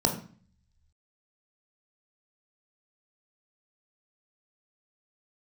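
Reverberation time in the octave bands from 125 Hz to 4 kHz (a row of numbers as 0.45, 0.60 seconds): 1.1, 0.70, 0.40, 0.45, 0.45, 0.45 seconds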